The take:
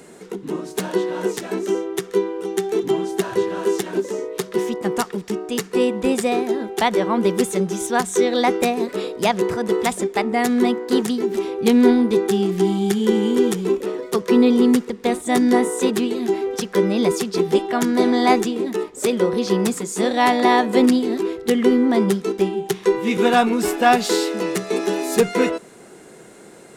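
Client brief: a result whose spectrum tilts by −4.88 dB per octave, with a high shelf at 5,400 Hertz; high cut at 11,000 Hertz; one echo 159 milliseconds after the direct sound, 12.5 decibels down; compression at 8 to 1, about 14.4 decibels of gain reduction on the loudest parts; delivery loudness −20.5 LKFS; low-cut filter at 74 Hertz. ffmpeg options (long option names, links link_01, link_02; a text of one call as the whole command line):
ffmpeg -i in.wav -af "highpass=74,lowpass=11000,highshelf=frequency=5400:gain=-5,acompressor=threshold=-26dB:ratio=8,aecho=1:1:159:0.237,volume=9.5dB" out.wav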